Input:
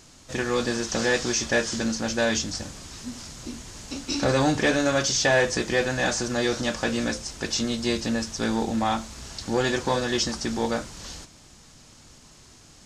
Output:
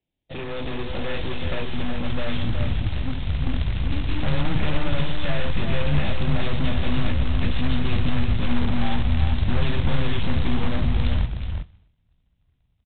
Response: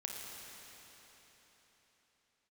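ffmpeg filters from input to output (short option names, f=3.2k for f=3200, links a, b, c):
-filter_complex "[0:a]afreqshift=17,asuperstop=centerf=1300:order=4:qfactor=1.1,aeval=exprs='(tanh(70.8*val(0)+0.35)-tanh(0.35))/70.8':c=same,agate=range=-36dB:threshold=-45dB:ratio=16:detection=peak,asubboost=boost=10:cutoff=120,asplit=2[a][b];[1:a]atrim=start_sample=2205,afade=t=out:st=0.32:d=0.01,atrim=end_sample=14553[c];[b][c]afir=irnorm=-1:irlink=0,volume=-14dB[d];[a][d]amix=inputs=2:normalize=0,dynaudnorm=f=410:g=3:m=3dB,aresample=8000,acrusher=bits=4:mode=log:mix=0:aa=0.000001,aresample=44100,asplit=2[e][f];[f]adelay=367.3,volume=-6dB,highshelf=f=4k:g=-8.27[g];[e][g]amix=inputs=2:normalize=0,volume=5.5dB"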